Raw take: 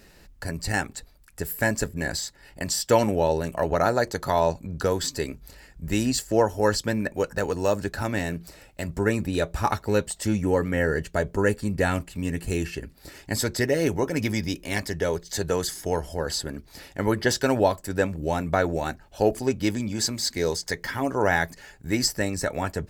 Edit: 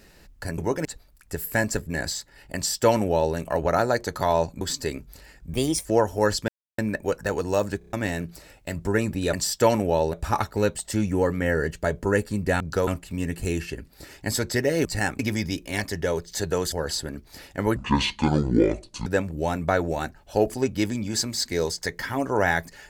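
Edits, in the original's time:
0.58–0.92 swap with 13.9–14.17
2.62–3.42 copy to 9.45
4.68–4.95 move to 11.92
5.87–6.27 speed 124%
6.9 insert silence 0.30 s
7.9 stutter in place 0.03 s, 5 plays
15.7–16.13 cut
17.17–17.91 speed 57%

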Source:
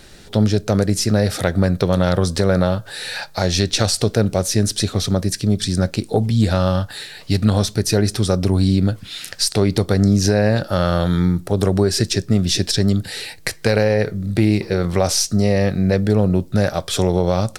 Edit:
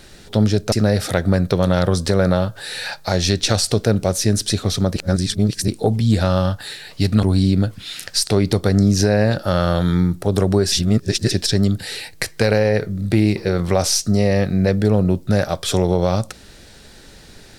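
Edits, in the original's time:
0.72–1.02 cut
5.26–5.98 reverse
7.53–8.48 cut
11.97–12.56 reverse

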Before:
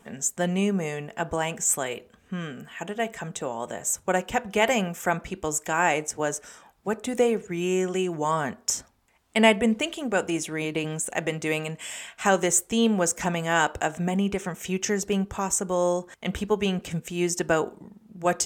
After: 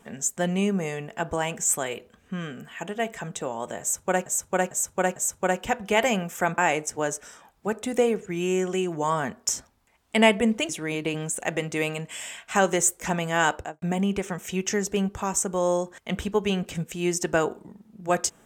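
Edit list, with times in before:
3.81–4.26 loop, 4 plays
5.23–5.79 cut
9.9–10.39 cut
12.7–13.16 cut
13.67–13.98 studio fade out

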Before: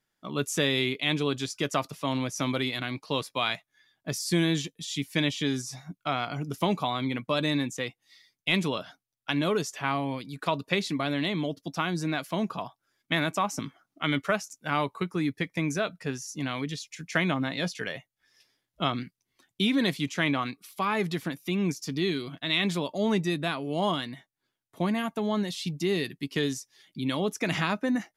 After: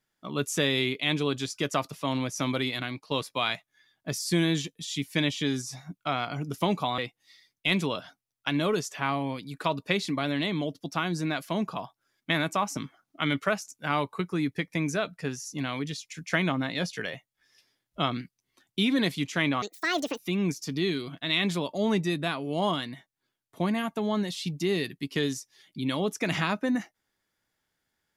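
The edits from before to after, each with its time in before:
2.82–3.11 fade out, to -7 dB
6.98–7.8 cut
20.44–21.39 speed 167%

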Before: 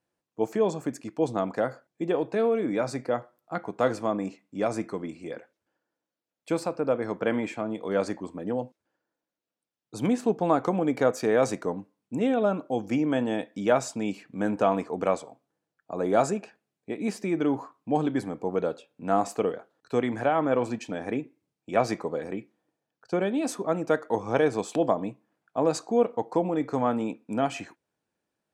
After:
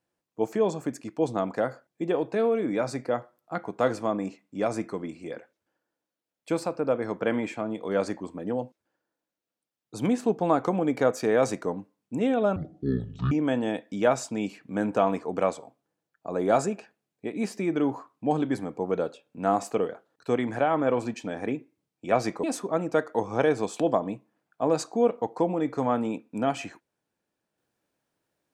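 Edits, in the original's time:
12.56–12.96 speed 53%
22.08–23.39 cut

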